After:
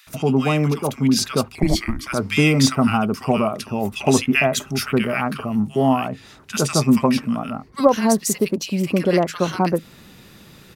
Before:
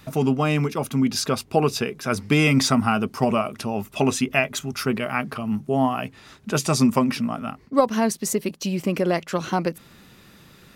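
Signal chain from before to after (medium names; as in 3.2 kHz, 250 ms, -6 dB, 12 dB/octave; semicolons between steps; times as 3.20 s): 1.55–2.07 s: frequency shift -460 Hz; bands offset in time highs, lows 70 ms, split 1.4 kHz; gain riding 2 s; trim +3 dB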